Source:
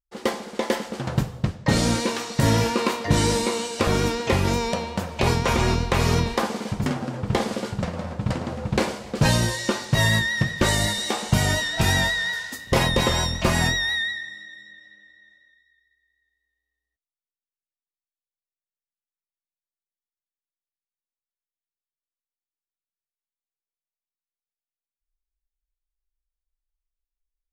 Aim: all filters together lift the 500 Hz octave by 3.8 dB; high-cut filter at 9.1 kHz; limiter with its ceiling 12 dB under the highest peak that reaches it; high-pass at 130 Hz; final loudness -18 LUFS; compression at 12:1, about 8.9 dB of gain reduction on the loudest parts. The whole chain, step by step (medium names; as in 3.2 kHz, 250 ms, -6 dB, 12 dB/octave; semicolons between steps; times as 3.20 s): high-pass 130 Hz; low-pass 9.1 kHz; peaking EQ 500 Hz +4.5 dB; compression 12:1, threshold -25 dBFS; trim +14.5 dB; peak limiter -8.5 dBFS